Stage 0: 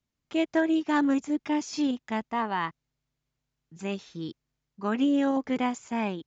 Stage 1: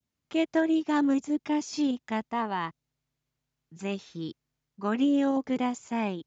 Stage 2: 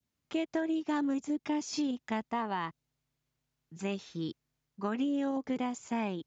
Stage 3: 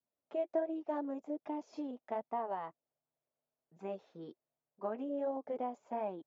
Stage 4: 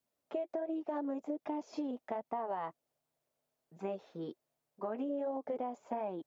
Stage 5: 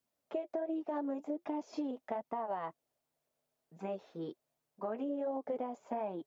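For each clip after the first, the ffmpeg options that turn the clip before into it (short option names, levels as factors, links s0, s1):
-af "highpass=52,adynamicequalizer=threshold=0.00631:dfrequency=1700:dqfactor=0.84:tfrequency=1700:tqfactor=0.84:attack=5:release=100:ratio=0.375:range=3:mode=cutabove:tftype=bell"
-af "acompressor=threshold=0.0355:ratio=6"
-af "bandpass=f=610:t=q:w=3:csg=0,flanger=delay=0.8:depth=4:regen=-51:speed=1.3:shape=sinusoidal,volume=2.51"
-af "alimiter=level_in=2.11:limit=0.0631:level=0:latency=1:release=113,volume=0.473,acompressor=threshold=0.01:ratio=6,volume=2.11"
-af "flanger=delay=0.6:depth=4.7:regen=-75:speed=0.43:shape=triangular,volume=1.68"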